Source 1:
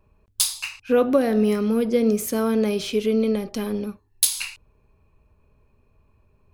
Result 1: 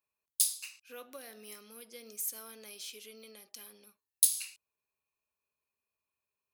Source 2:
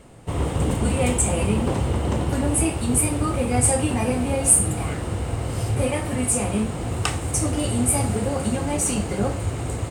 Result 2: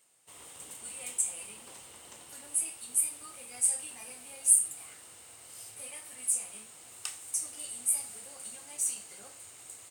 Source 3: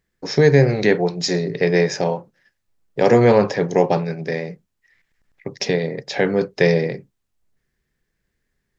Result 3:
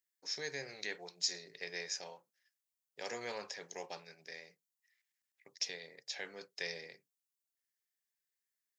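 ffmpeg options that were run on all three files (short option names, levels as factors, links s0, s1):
-af "aderivative,volume=0.422"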